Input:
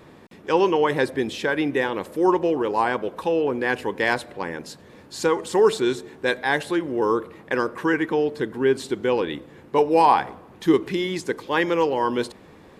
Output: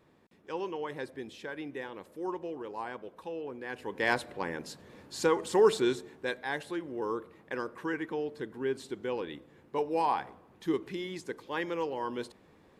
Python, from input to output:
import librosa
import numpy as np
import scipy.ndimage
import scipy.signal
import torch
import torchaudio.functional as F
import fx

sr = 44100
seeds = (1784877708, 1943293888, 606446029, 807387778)

y = fx.gain(x, sr, db=fx.line((3.68, -17.0), (4.11, -5.5), (5.85, -5.5), (6.38, -12.5)))